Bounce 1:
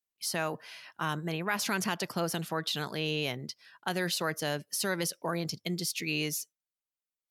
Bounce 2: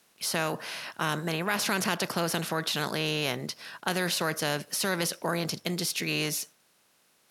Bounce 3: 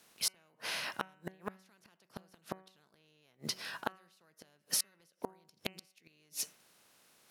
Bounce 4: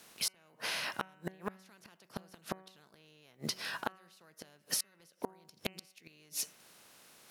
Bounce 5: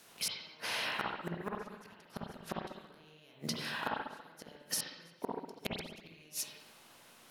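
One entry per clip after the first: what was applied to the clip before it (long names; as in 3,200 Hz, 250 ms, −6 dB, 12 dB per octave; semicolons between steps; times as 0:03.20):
compressor on every frequency bin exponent 0.6
gate with flip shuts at −19 dBFS, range −39 dB; floating-point word with a short mantissa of 4 bits; hum removal 188.6 Hz, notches 16
downward compressor 2 to 1, threshold −44 dBFS, peak gain reduction 9 dB; level +6.5 dB
convolution reverb RT60 0.95 s, pre-delay 47 ms, DRR −2.5 dB; level −2 dB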